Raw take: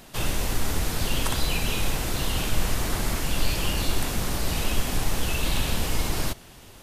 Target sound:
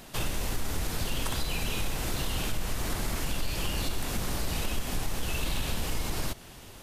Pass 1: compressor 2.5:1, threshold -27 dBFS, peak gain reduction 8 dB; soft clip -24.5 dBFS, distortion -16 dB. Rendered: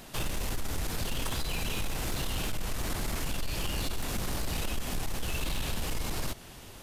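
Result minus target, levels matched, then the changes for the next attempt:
soft clip: distortion +11 dB
change: soft clip -17 dBFS, distortion -27 dB

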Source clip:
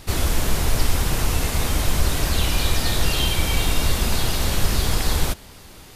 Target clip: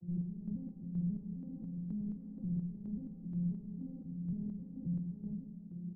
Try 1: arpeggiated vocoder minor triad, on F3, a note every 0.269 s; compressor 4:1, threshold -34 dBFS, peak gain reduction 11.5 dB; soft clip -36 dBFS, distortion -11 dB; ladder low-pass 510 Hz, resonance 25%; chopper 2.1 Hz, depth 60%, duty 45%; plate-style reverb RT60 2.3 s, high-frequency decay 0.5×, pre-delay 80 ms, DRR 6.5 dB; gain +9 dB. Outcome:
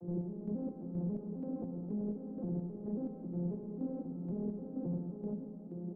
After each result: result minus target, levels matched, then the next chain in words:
500 Hz band +17.5 dB; compressor: peak gain reduction +11.5 dB
arpeggiated vocoder minor triad, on F3, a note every 0.269 s; compressor 4:1, threshold -34 dBFS, peak gain reduction 11.5 dB; soft clip -36 dBFS, distortion -11 dB; ladder low-pass 220 Hz, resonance 25%; chopper 2.1 Hz, depth 60%, duty 45%; plate-style reverb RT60 2.3 s, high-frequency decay 0.5×, pre-delay 80 ms, DRR 6.5 dB; gain +9 dB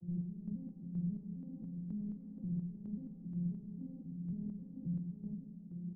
compressor: peak gain reduction +11.5 dB
arpeggiated vocoder minor triad, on F3, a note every 0.269 s; soft clip -36 dBFS, distortion -6 dB; ladder low-pass 220 Hz, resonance 25%; chopper 2.1 Hz, depth 60%, duty 45%; plate-style reverb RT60 2.3 s, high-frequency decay 0.5×, pre-delay 80 ms, DRR 6.5 dB; gain +9 dB

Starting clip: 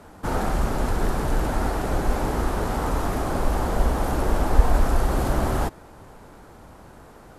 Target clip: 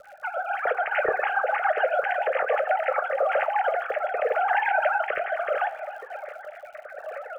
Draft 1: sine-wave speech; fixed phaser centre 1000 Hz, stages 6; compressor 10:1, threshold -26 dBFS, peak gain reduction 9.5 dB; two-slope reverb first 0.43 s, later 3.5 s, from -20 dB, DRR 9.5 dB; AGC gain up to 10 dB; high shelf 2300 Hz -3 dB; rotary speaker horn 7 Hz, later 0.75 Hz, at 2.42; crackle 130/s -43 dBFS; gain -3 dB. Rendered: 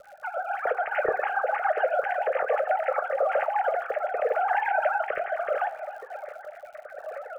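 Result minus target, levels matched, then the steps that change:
4000 Hz band -5.5 dB
change: high shelf 2300 Hz +8.5 dB

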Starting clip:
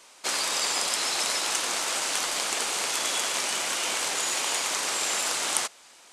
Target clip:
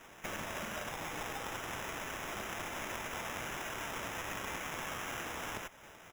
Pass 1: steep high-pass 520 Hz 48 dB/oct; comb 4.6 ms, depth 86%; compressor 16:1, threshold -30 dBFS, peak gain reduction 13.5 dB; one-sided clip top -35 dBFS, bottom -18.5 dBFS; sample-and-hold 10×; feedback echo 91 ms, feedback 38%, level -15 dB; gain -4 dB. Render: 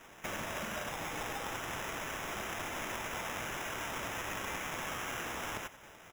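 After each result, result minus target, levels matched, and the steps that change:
echo-to-direct +7 dB; one-sided clip: distortion -4 dB
change: feedback echo 91 ms, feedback 38%, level -22 dB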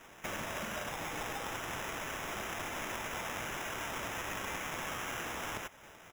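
one-sided clip: distortion -4 dB
change: one-sided clip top -42 dBFS, bottom -18.5 dBFS

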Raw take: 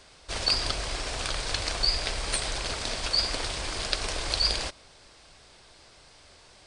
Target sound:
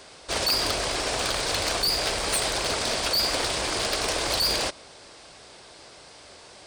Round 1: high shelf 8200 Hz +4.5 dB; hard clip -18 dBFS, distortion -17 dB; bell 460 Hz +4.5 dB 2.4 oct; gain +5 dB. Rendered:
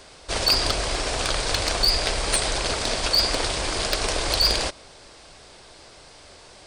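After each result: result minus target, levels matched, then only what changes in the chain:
hard clip: distortion -8 dB; 125 Hz band +3.5 dB
change: hard clip -25.5 dBFS, distortion -8 dB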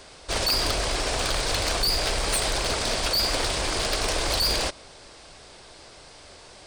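125 Hz band +5.0 dB
add after hard clip: HPF 120 Hz 6 dB/oct

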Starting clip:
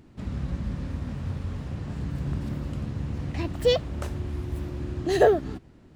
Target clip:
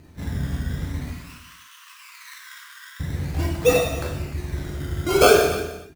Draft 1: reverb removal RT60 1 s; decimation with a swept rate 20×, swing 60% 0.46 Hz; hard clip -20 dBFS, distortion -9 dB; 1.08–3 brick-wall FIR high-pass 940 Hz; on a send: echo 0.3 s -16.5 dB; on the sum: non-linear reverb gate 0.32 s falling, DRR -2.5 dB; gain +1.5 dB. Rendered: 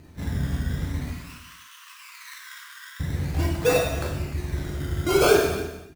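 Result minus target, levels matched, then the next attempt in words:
hard clip: distortion +28 dB
reverb removal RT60 1 s; decimation with a swept rate 20×, swing 60% 0.46 Hz; hard clip -8.5 dBFS, distortion -37 dB; 1.08–3 brick-wall FIR high-pass 940 Hz; on a send: echo 0.3 s -16.5 dB; on the sum: non-linear reverb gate 0.32 s falling, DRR -2.5 dB; gain +1.5 dB

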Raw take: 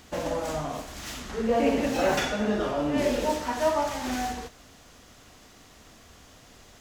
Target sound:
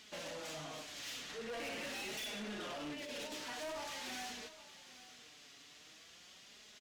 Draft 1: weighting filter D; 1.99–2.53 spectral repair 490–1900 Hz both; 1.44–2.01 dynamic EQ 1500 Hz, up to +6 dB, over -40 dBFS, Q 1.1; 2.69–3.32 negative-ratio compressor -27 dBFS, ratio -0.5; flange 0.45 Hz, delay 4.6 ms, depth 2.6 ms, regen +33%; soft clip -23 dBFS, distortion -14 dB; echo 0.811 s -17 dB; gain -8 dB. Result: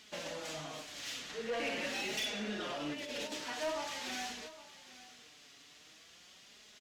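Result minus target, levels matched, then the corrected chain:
soft clip: distortion -8 dB
weighting filter D; 1.99–2.53 spectral repair 490–1900 Hz both; 1.44–2.01 dynamic EQ 1500 Hz, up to +6 dB, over -40 dBFS, Q 1.1; 2.69–3.32 negative-ratio compressor -27 dBFS, ratio -0.5; flange 0.45 Hz, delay 4.6 ms, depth 2.6 ms, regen +33%; soft clip -33 dBFS, distortion -6 dB; echo 0.811 s -17 dB; gain -8 dB

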